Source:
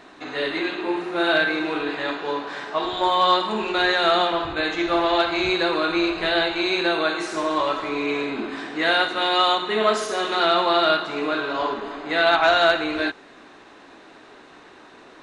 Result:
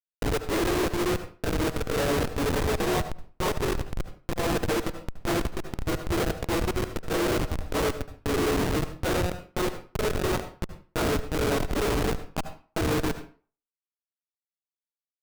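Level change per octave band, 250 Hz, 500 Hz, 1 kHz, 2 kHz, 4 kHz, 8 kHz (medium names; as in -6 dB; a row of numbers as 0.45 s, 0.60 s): -3.0 dB, -5.5 dB, -11.0 dB, -11.5 dB, -12.0 dB, +5.5 dB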